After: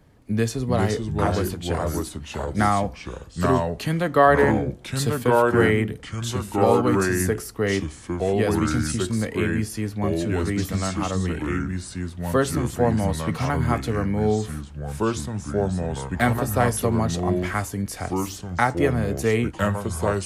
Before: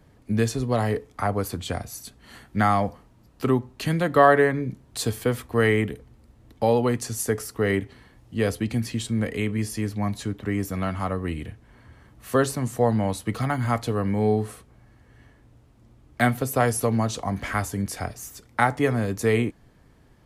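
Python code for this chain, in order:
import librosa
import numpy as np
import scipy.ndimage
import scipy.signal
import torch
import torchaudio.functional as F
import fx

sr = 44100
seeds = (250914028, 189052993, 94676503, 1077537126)

y = fx.echo_pitch(x, sr, ms=330, semitones=-3, count=2, db_per_echo=-3.0)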